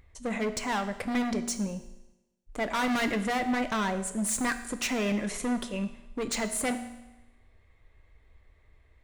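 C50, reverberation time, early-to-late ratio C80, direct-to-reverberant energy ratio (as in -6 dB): 11.5 dB, 1.0 s, 13.5 dB, 9.0 dB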